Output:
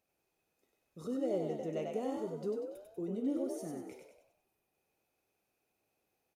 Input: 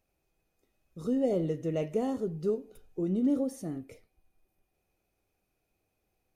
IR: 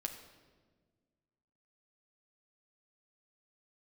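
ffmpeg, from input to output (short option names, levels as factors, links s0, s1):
-filter_complex "[0:a]highpass=f=250:p=1,asplit=2[s0][s1];[s1]acompressor=threshold=0.00891:ratio=6,volume=0.944[s2];[s0][s2]amix=inputs=2:normalize=0,asplit=7[s3][s4][s5][s6][s7][s8][s9];[s4]adelay=96,afreqshift=56,volume=0.631[s10];[s5]adelay=192,afreqshift=112,volume=0.292[s11];[s6]adelay=288,afreqshift=168,volume=0.133[s12];[s7]adelay=384,afreqshift=224,volume=0.0617[s13];[s8]adelay=480,afreqshift=280,volume=0.0282[s14];[s9]adelay=576,afreqshift=336,volume=0.013[s15];[s3][s10][s11][s12][s13][s14][s15]amix=inputs=7:normalize=0,volume=0.398"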